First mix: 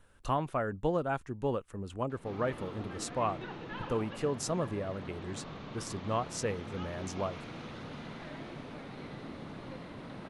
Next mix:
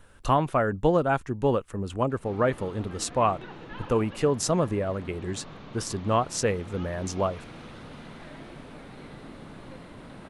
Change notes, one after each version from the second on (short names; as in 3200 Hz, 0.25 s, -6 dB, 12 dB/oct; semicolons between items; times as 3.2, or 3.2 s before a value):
speech +8.5 dB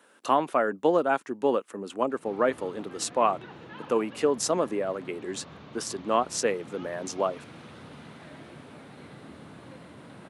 speech: add HPF 240 Hz 24 dB/oct; reverb: off